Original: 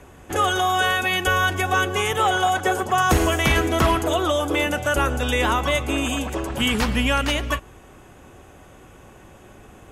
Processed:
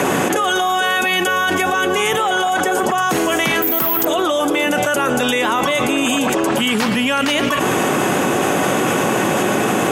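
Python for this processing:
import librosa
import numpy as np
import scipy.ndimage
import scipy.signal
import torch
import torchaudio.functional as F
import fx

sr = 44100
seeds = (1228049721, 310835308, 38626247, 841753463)

y = scipy.signal.sosfilt(scipy.signal.butter(4, 160.0, 'highpass', fs=sr, output='sos'), x)
y = fx.resample_bad(y, sr, factor=3, down='none', up='zero_stuff', at=(3.62, 4.05))
y = fx.env_flatten(y, sr, amount_pct=100)
y = F.gain(torch.from_numpy(y), -4.5).numpy()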